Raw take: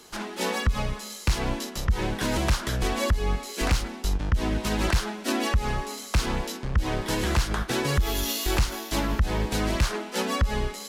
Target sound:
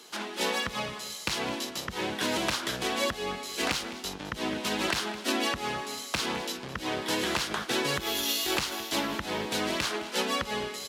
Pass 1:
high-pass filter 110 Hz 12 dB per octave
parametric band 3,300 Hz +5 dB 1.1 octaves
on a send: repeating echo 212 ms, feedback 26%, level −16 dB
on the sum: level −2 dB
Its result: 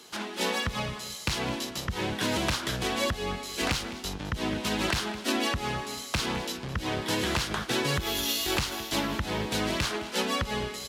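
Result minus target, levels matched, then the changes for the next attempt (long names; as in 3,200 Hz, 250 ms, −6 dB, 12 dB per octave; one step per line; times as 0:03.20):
125 Hz band +8.0 dB
change: high-pass filter 230 Hz 12 dB per octave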